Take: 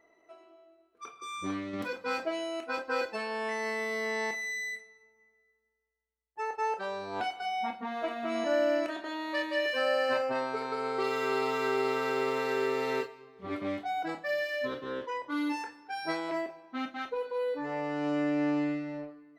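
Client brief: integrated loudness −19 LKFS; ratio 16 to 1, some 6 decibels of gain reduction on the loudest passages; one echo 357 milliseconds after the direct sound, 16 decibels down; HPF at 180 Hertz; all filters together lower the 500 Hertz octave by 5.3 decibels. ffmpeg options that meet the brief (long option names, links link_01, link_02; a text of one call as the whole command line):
ffmpeg -i in.wav -af "highpass=180,equalizer=frequency=500:width_type=o:gain=-6.5,acompressor=threshold=-34dB:ratio=16,aecho=1:1:357:0.158,volume=19.5dB" out.wav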